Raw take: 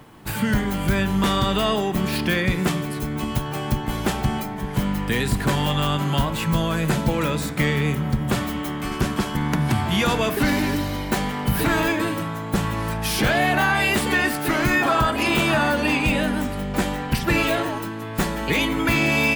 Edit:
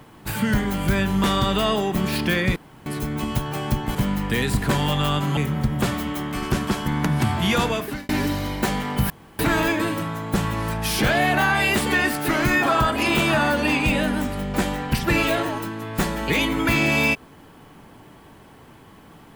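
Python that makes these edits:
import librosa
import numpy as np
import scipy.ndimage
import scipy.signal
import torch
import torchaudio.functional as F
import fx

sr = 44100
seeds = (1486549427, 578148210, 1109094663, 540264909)

y = fx.edit(x, sr, fx.room_tone_fill(start_s=2.56, length_s=0.3),
    fx.cut(start_s=3.95, length_s=0.78),
    fx.cut(start_s=6.15, length_s=1.71),
    fx.fade_out_span(start_s=10.11, length_s=0.47),
    fx.insert_room_tone(at_s=11.59, length_s=0.29), tone=tone)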